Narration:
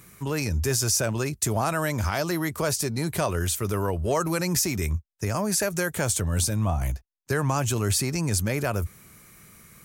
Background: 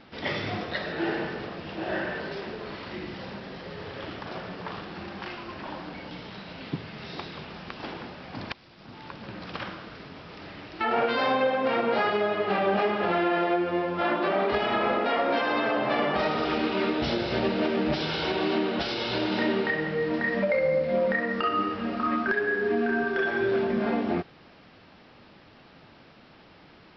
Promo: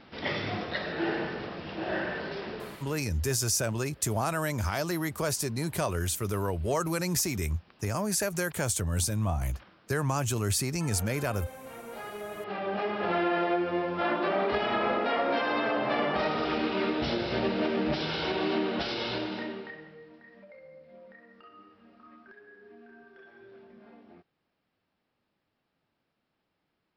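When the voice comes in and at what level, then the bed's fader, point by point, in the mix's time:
2.60 s, −4.0 dB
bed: 0:02.62 −1.5 dB
0:03.05 −20 dB
0:11.69 −20 dB
0:13.16 −2.5 dB
0:19.07 −2.5 dB
0:20.21 −27 dB

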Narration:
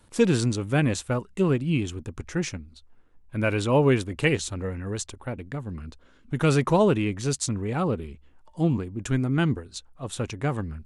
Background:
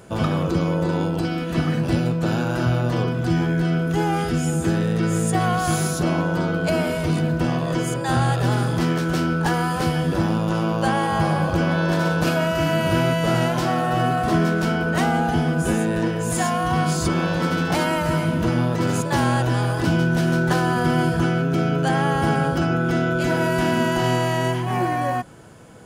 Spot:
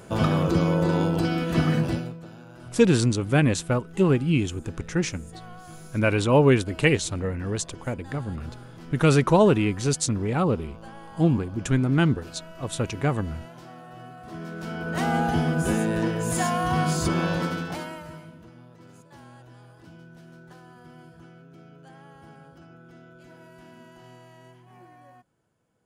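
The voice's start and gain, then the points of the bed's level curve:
2.60 s, +2.5 dB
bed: 0:01.80 −0.5 dB
0:02.30 −23 dB
0:14.17 −23 dB
0:15.15 −3 dB
0:17.34 −3 dB
0:18.50 −28.5 dB

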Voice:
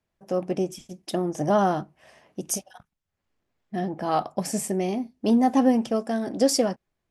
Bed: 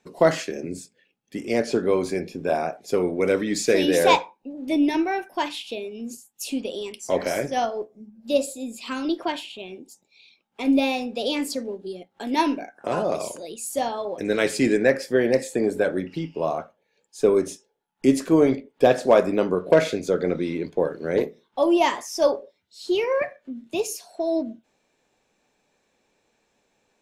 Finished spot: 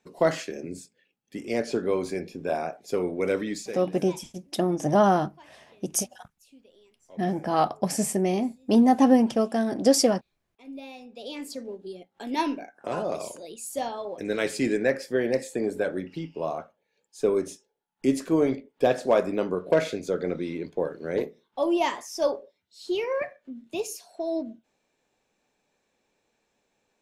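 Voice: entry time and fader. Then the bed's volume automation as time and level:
3.45 s, +1.5 dB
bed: 0:03.48 −4.5 dB
0:03.92 −27 dB
0:10.38 −27 dB
0:11.74 −5 dB

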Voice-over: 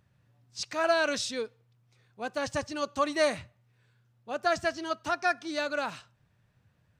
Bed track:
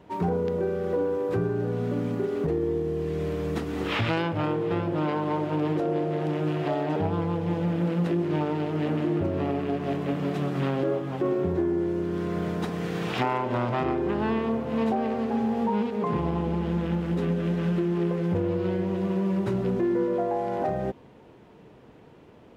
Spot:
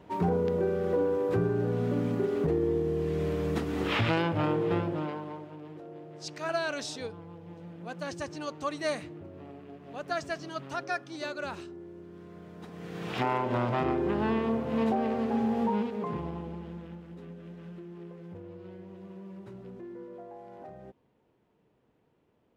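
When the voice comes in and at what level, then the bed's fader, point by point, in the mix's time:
5.65 s, −5.5 dB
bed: 0:04.76 −1 dB
0:05.58 −19 dB
0:12.49 −19 dB
0:13.30 −2 dB
0:15.66 −2 dB
0:17.09 −19 dB

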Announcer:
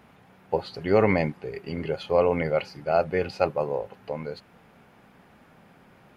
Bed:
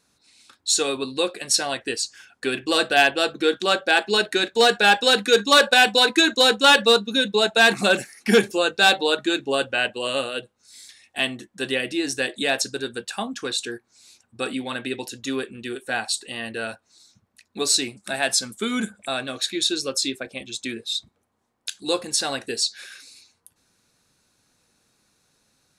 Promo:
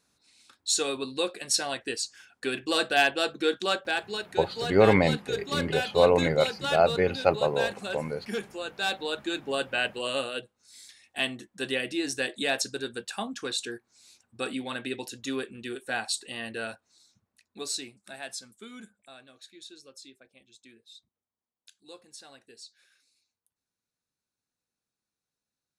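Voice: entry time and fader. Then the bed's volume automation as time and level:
3.85 s, +1.0 dB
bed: 0:03.63 −5.5 dB
0:04.35 −16.5 dB
0:08.43 −16.5 dB
0:09.77 −5 dB
0:16.62 −5 dB
0:19.36 −24.5 dB

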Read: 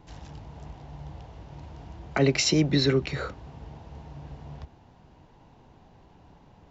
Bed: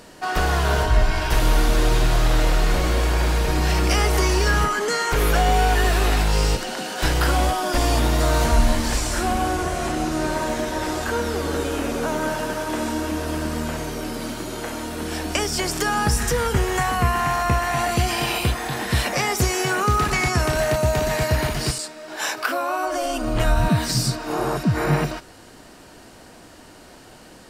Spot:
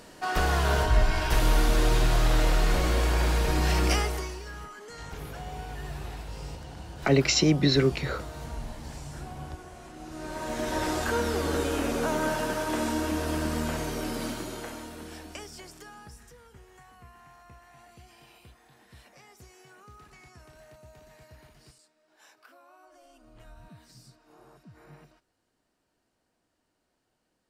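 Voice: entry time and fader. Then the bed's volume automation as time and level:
4.90 s, +0.5 dB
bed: 0:03.92 −4.5 dB
0:04.43 −22 dB
0:09.93 −22 dB
0:10.73 −3.5 dB
0:14.26 −3.5 dB
0:16.40 −32 dB

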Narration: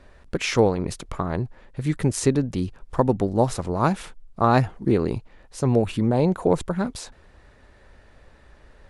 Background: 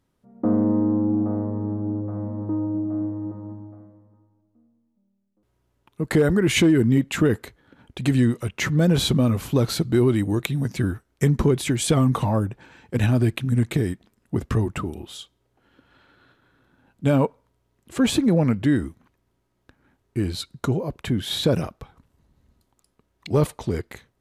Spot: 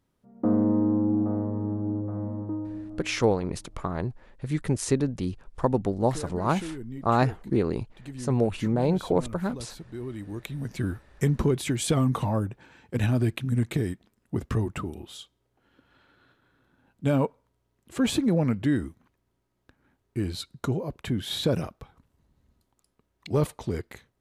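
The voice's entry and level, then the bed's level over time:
2.65 s, −4.0 dB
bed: 0:02.34 −2.5 dB
0:03.25 −20 dB
0:09.89 −20 dB
0:10.91 −4.5 dB

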